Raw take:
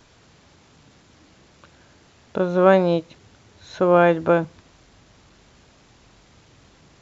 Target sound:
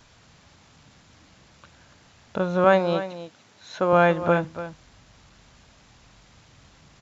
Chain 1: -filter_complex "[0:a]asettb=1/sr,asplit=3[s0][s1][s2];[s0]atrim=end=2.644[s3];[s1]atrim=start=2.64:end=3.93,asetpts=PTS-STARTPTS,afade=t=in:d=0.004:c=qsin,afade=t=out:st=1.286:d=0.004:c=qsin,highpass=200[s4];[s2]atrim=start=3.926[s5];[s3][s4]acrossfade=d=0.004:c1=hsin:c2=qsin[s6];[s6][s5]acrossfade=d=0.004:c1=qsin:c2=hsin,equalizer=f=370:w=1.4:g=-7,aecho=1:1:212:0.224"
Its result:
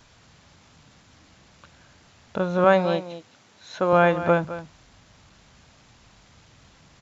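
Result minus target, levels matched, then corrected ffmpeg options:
echo 75 ms early
-filter_complex "[0:a]asettb=1/sr,asplit=3[s0][s1][s2];[s0]atrim=end=2.644[s3];[s1]atrim=start=2.64:end=3.93,asetpts=PTS-STARTPTS,afade=t=in:d=0.004:c=qsin,afade=t=out:st=1.286:d=0.004:c=qsin,highpass=200[s4];[s2]atrim=start=3.926[s5];[s3][s4]acrossfade=d=0.004:c1=hsin:c2=qsin[s6];[s6][s5]acrossfade=d=0.004:c1=qsin:c2=hsin,equalizer=f=370:w=1.4:g=-7,aecho=1:1:287:0.224"

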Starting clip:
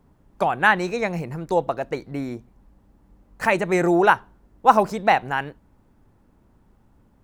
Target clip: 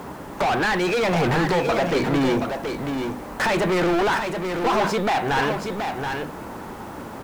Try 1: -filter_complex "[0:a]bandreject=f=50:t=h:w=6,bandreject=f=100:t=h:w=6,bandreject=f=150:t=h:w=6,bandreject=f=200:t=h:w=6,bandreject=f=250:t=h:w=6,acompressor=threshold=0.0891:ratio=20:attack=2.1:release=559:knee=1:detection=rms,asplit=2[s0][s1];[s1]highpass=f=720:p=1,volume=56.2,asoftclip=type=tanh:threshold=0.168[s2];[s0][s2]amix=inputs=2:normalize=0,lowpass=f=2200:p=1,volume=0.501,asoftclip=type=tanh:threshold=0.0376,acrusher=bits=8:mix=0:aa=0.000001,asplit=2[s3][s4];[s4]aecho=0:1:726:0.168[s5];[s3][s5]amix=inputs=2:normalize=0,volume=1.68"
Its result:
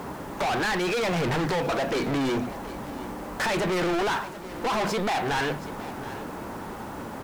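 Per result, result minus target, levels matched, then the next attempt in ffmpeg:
echo-to-direct -9.5 dB; saturation: distortion +8 dB
-filter_complex "[0:a]bandreject=f=50:t=h:w=6,bandreject=f=100:t=h:w=6,bandreject=f=150:t=h:w=6,bandreject=f=200:t=h:w=6,bandreject=f=250:t=h:w=6,acompressor=threshold=0.0891:ratio=20:attack=2.1:release=559:knee=1:detection=rms,asplit=2[s0][s1];[s1]highpass=f=720:p=1,volume=56.2,asoftclip=type=tanh:threshold=0.168[s2];[s0][s2]amix=inputs=2:normalize=0,lowpass=f=2200:p=1,volume=0.501,asoftclip=type=tanh:threshold=0.0376,acrusher=bits=8:mix=0:aa=0.000001,asplit=2[s3][s4];[s4]aecho=0:1:726:0.501[s5];[s3][s5]amix=inputs=2:normalize=0,volume=1.68"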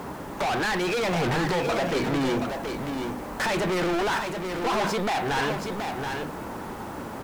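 saturation: distortion +8 dB
-filter_complex "[0:a]bandreject=f=50:t=h:w=6,bandreject=f=100:t=h:w=6,bandreject=f=150:t=h:w=6,bandreject=f=200:t=h:w=6,bandreject=f=250:t=h:w=6,acompressor=threshold=0.0891:ratio=20:attack=2.1:release=559:knee=1:detection=rms,asplit=2[s0][s1];[s1]highpass=f=720:p=1,volume=56.2,asoftclip=type=tanh:threshold=0.168[s2];[s0][s2]amix=inputs=2:normalize=0,lowpass=f=2200:p=1,volume=0.501,asoftclip=type=tanh:threshold=0.0841,acrusher=bits=8:mix=0:aa=0.000001,asplit=2[s3][s4];[s4]aecho=0:1:726:0.501[s5];[s3][s5]amix=inputs=2:normalize=0,volume=1.68"

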